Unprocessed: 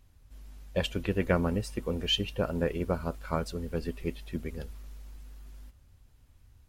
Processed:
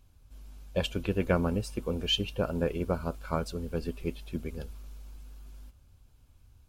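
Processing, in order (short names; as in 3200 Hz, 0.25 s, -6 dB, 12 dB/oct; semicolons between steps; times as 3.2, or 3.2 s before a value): notch 1900 Hz, Q 5.3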